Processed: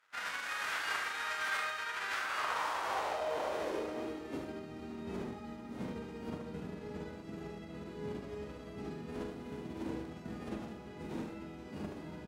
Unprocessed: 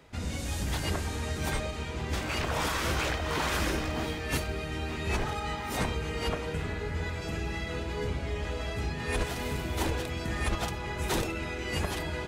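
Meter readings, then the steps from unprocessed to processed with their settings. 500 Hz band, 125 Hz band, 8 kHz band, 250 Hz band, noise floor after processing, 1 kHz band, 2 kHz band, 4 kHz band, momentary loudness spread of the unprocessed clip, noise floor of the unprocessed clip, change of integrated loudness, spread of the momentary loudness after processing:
-6.5 dB, -16.0 dB, -12.0 dB, -6.0 dB, -48 dBFS, -4.0 dB, -4.5 dB, -9.0 dB, 5 LU, -36 dBFS, -7.0 dB, 11 LU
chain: spectral whitening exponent 0.3; crossover distortion -56 dBFS; band-pass sweep 1500 Hz -> 230 Hz, 2.12–4.72; doubler 43 ms -7 dB; on a send: echo 74 ms -6 dB; on the sum: gain +3.5 dB

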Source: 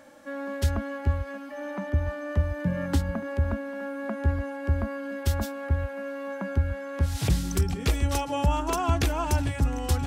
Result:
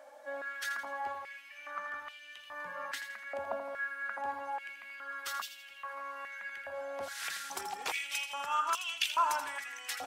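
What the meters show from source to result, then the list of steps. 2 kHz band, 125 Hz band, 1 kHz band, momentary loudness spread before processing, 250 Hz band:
0.0 dB, under -40 dB, -2.0 dB, 8 LU, -28.0 dB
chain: bin magnitudes rounded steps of 15 dB; feedback echo 82 ms, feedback 43%, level -9.5 dB; stepped high-pass 2.4 Hz 690–2900 Hz; gain -5.5 dB

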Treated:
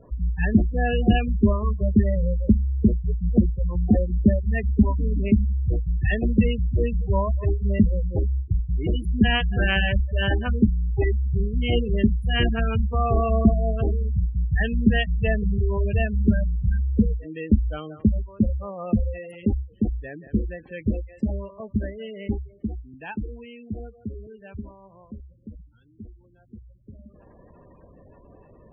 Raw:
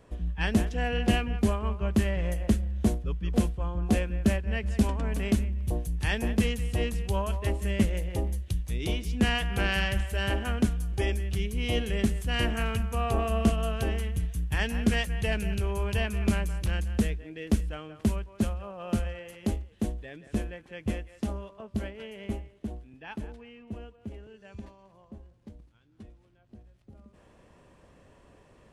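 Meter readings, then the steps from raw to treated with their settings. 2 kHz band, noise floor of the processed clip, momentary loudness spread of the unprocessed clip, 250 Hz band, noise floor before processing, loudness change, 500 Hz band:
+3.5 dB, -53 dBFS, 13 LU, +6.5 dB, -59 dBFS, +6.0 dB, +5.0 dB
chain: spectral gate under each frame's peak -15 dB strong; gain +7 dB

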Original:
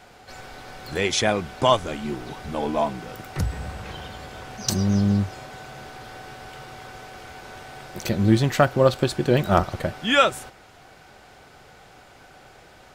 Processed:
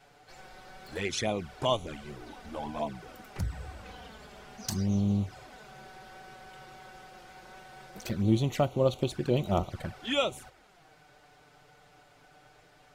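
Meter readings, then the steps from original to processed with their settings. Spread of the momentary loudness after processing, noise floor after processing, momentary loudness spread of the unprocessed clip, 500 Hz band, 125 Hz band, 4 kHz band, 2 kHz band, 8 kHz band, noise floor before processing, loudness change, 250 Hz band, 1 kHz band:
22 LU, -60 dBFS, 21 LU, -8.5 dB, -7.5 dB, -9.0 dB, -12.5 dB, -10.0 dB, -50 dBFS, -8.5 dB, -7.5 dB, -11.5 dB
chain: envelope flanger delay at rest 7.7 ms, full sweep at -17.5 dBFS; gain -7 dB

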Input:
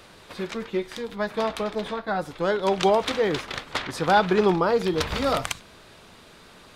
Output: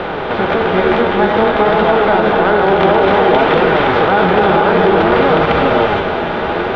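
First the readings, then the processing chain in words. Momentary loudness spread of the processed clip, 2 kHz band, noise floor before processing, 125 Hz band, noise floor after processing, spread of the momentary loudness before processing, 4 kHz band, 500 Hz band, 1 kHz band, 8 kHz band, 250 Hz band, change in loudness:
6 LU, +15.0 dB, -50 dBFS, +13.0 dB, -19 dBFS, 12 LU, +9.0 dB, +13.5 dB, +14.5 dB, under -10 dB, +13.0 dB, +12.5 dB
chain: per-bin compression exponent 0.4; LPF 3000 Hz 24 dB/oct; non-linear reverb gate 0.5 s rising, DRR -0.5 dB; flange 0.55 Hz, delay 5.4 ms, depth 8.1 ms, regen +58%; maximiser +10.5 dB; gain -1 dB

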